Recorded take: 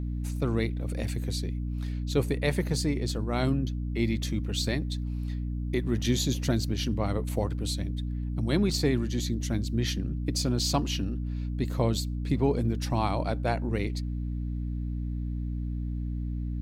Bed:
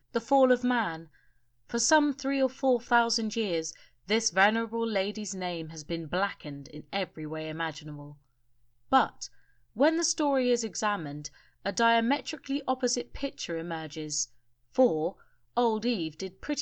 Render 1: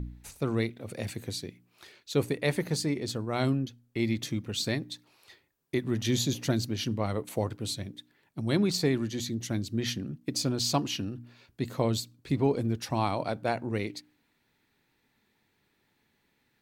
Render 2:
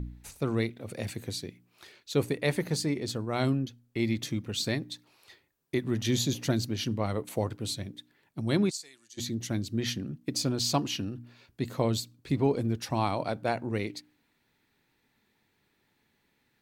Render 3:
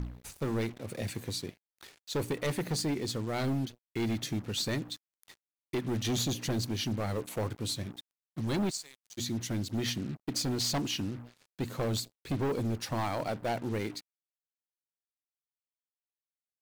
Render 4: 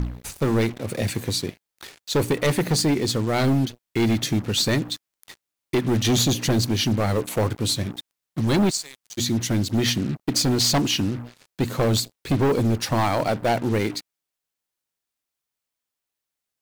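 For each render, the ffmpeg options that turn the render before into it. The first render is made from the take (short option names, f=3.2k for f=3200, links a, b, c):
-af "bandreject=f=60:t=h:w=4,bandreject=f=120:t=h:w=4,bandreject=f=180:t=h:w=4,bandreject=f=240:t=h:w=4,bandreject=f=300:t=h:w=4"
-filter_complex "[0:a]asplit=3[a][b][c];[a]afade=t=out:st=8.69:d=0.02[d];[b]bandpass=f=7.8k:t=q:w=2,afade=t=in:st=8.69:d=0.02,afade=t=out:st=9.17:d=0.02[e];[c]afade=t=in:st=9.17:d=0.02[f];[d][e][f]amix=inputs=3:normalize=0"
-af "acrusher=bits=7:mix=0:aa=0.5,asoftclip=type=hard:threshold=-27dB"
-af "volume=11dB"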